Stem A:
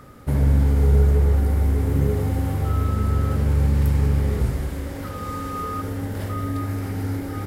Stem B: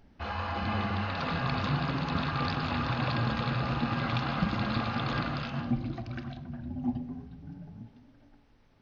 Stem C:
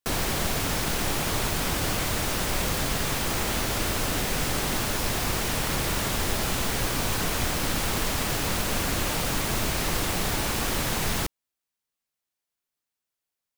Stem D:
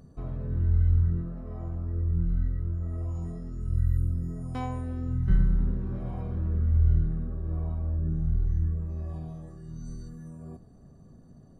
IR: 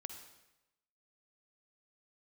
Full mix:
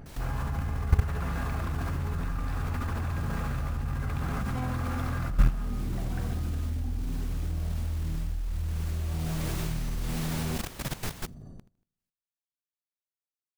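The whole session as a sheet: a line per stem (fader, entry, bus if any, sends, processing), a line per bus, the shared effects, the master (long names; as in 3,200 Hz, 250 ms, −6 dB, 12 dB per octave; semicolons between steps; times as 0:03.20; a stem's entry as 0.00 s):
−12.0 dB, 0.00 s, no bus, send −13 dB, echo send −13.5 dB, tilt shelving filter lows +8.5 dB; tuned comb filter 73 Hz, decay 0.21 s, harmonics all, mix 50%
−1.0 dB, 0.00 s, bus A, no send, no echo send, high shelf with overshoot 2,600 Hz −8.5 dB, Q 1.5; envelope flattener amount 50%
−13.0 dB, 0.00 s, bus A, send −22.5 dB, echo send −16 dB, no processing
0.0 dB, 0.00 s, bus A, send −13 dB, echo send −12 dB, low-shelf EQ 110 Hz +8 dB; speech leveller within 5 dB 0.5 s
bus A: 0.0 dB, automatic gain control gain up to 7.5 dB; brickwall limiter −14.5 dBFS, peak gain reduction 11.5 dB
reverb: on, RT60 0.95 s, pre-delay 45 ms
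echo: repeating echo 78 ms, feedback 32%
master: output level in coarse steps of 15 dB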